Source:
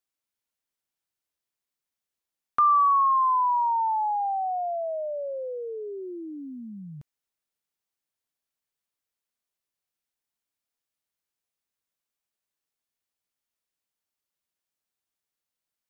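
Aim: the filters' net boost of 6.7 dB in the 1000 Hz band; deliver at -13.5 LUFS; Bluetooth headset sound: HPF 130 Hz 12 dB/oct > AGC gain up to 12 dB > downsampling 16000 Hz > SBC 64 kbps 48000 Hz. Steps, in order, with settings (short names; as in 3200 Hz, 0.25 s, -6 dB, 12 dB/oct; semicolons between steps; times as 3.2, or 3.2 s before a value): HPF 130 Hz 12 dB/oct; bell 1000 Hz +7.5 dB; AGC gain up to 12 dB; downsampling 16000 Hz; gain +3 dB; SBC 64 kbps 48000 Hz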